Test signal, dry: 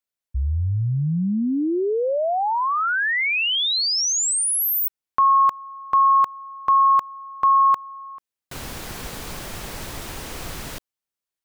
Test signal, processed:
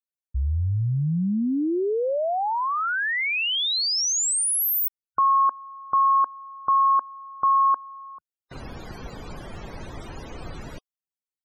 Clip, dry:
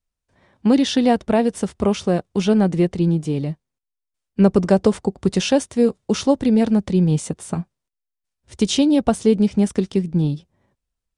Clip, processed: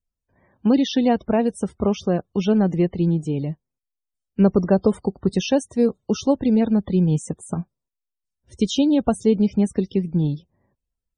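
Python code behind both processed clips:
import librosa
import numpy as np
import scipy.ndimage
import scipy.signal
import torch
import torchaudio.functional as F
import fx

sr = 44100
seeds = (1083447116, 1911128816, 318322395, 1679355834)

y = fx.peak_eq(x, sr, hz=1600.0, db=-2.0, octaves=2.9)
y = fx.spec_topn(y, sr, count=64)
y = y * 10.0 ** (-1.5 / 20.0)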